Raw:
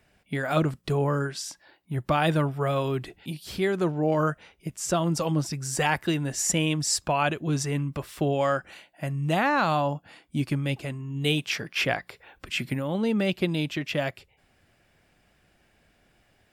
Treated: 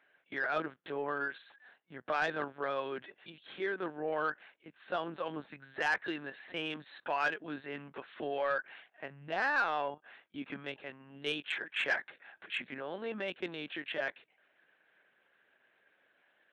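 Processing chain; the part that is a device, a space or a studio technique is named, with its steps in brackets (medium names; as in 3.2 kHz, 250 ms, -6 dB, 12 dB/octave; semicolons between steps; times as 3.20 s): talking toy (LPC vocoder at 8 kHz pitch kept; high-pass 370 Hz 12 dB/octave; peaking EQ 1.6 kHz +10 dB 0.4 oct; saturation -14 dBFS, distortion -18 dB); trim -7.5 dB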